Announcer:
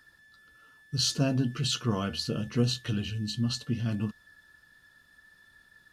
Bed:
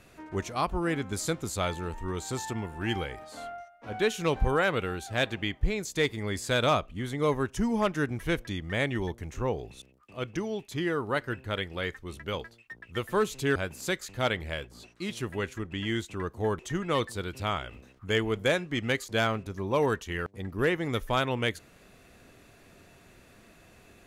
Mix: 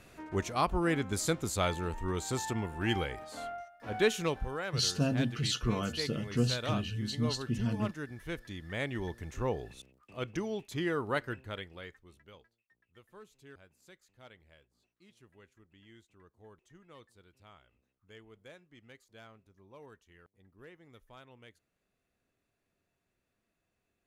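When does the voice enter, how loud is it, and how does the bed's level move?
3.80 s, -3.0 dB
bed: 4.17 s -0.5 dB
4.47 s -12 dB
8.10 s -12 dB
9.38 s -3 dB
11.19 s -3 dB
12.63 s -27 dB

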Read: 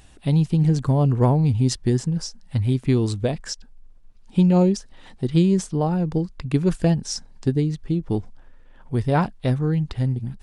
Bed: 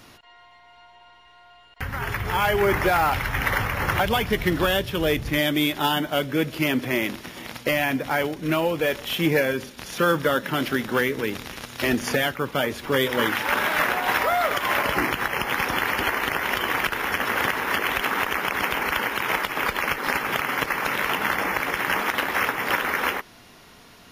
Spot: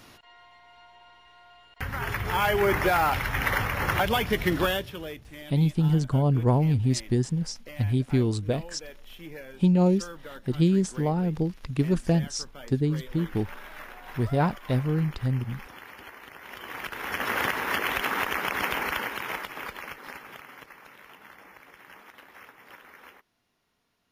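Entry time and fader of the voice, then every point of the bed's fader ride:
5.25 s, -4.0 dB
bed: 4.64 s -2.5 dB
5.28 s -21.5 dB
16.33 s -21.5 dB
17.28 s -3.5 dB
18.78 s -3.5 dB
20.96 s -26 dB

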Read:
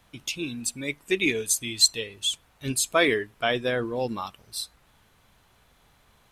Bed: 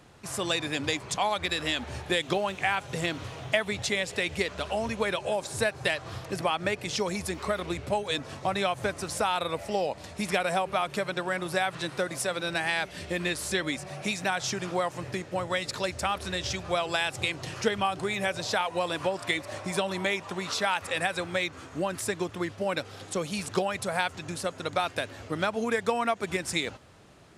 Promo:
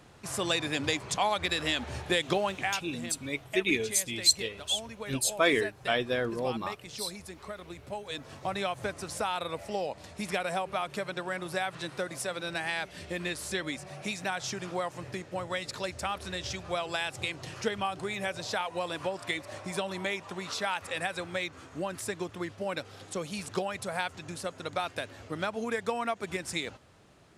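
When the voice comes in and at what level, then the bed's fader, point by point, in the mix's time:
2.45 s, -3.5 dB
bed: 2.50 s -0.5 dB
2.99 s -12 dB
7.75 s -12 dB
8.51 s -4.5 dB

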